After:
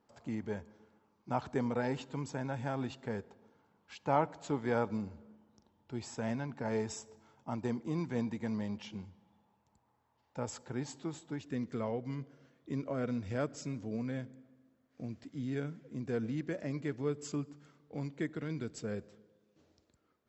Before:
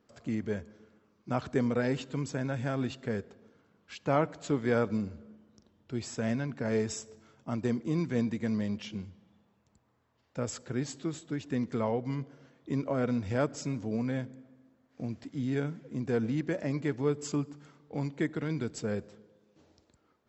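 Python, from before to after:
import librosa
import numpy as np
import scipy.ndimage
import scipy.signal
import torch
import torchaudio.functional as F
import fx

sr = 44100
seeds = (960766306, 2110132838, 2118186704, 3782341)

y = fx.peak_eq(x, sr, hz=870.0, db=fx.steps((0.0, 12.5), (11.41, -3.5)), octaves=0.38)
y = y * 10.0 ** (-5.5 / 20.0)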